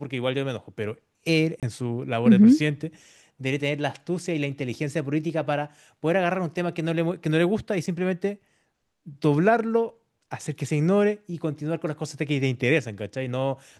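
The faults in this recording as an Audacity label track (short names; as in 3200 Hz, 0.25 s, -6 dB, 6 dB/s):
1.600000	1.630000	gap 27 ms
7.860000	7.870000	gap 5.3 ms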